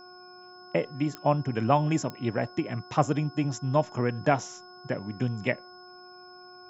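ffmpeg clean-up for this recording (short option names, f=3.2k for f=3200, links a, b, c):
-af "adeclick=t=4,bandreject=f=362.5:t=h:w=4,bandreject=f=725:t=h:w=4,bandreject=f=1.0875k:t=h:w=4,bandreject=f=1.45k:t=h:w=4,bandreject=f=5.2k:w=30"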